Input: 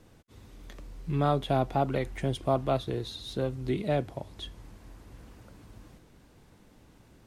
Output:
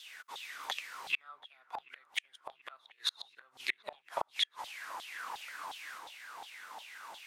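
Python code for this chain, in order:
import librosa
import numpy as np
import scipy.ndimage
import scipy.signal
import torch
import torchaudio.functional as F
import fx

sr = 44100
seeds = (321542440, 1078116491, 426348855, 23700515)

p1 = fx.filter_lfo_highpass(x, sr, shape='saw_down', hz=2.8, low_hz=780.0, high_hz=3600.0, q=7.0)
p2 = fx.gate_flip(p1, sr, shuts_db=-28.0, range_db=-39)
p3 = p2 + fx.echo_wet_lowpass(p2, sr, ms=733, feedback_pct=67, hz=1700.0, wet_db=-20, dry=0)
y = F.gain(torch.from_numpy(p3), 10.5).numpy()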